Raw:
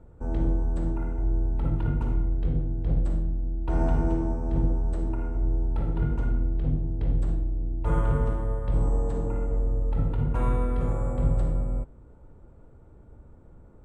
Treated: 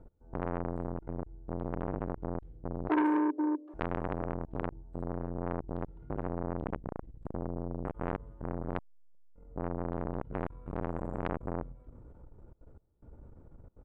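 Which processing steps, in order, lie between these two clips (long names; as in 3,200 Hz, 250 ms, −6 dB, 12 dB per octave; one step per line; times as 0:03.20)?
0:06.60–0:07.33: sub-octave generator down 2 octaves, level −3 dB
high-shelf EQ 2,000 Hz −10 dB
mains-hum notches 50/100/150/200/250 Hz
gate pattern "x...xxxxxxxx.x" 182 BPM −24 dB
0:02.89–0:03.74: frequency shifter +260 Hz
0:08.79–0:09.33: phases set to zero 178 Hz
convolution reverb RT60 0.20 s, pre-delay 107 ms, DRR 30 dB
0:10.39–0:10.91: delay throw 270 ms, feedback 45%, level −9 dB
saturating transformer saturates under 1,100 Hz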